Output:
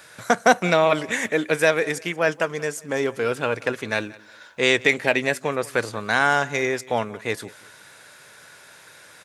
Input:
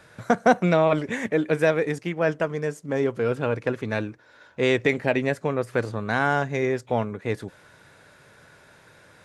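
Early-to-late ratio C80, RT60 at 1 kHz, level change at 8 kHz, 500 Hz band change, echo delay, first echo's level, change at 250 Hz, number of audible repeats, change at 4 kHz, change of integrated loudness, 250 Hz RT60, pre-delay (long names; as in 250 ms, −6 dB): no reverb audible, no reverb audible, +12.0 dB, +0.5 dB, 181 ms, −22.0 dB, −2.5 dB, 2, +9.0 dB, +2.0 dB, no reverb audible, no reverb audible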